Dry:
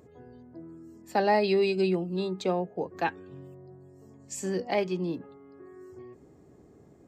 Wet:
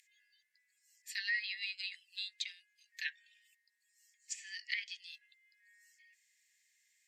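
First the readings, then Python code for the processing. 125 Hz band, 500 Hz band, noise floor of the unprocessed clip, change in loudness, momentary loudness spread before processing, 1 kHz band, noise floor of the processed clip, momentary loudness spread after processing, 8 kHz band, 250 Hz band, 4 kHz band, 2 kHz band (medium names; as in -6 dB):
under -40 dB, under -40 dB, -56 dBFS, -11.0 dB, 23 LU, under -40 dB, -79 dBFS, 19 LU, -5.0 dB, under -40 dB, 0.0 dB, -1.5 dB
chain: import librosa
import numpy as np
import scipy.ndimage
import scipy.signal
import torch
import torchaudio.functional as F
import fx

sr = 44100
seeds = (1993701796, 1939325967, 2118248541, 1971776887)

y = fx.dynamic_eq(x, sr, hz=2500.0, q=3.8, threshold_db=-53.0, ratio=4.0, max_db=-8)
y = scipy.signal.sosfilt(scipy.signal.butter(16, 1800.0, 'highpass', fs=sr, output='sos'), y)
y = fx.env_lowpass_down(y, sr, base_hz=2600.0, full_db=-36.5)
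y = y * librosa.db_to_amplitude(4.5)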